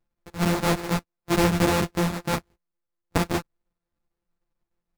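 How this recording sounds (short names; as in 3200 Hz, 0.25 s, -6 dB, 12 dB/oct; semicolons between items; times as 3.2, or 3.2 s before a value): a buzz of ramps at a fixed pitch in blocks of 256 samples; chopped level 6.6 Hz, duty 90%; aliases and images of a low sample rate 3100 Hz, jitter 20%; a shimmering, thickened sound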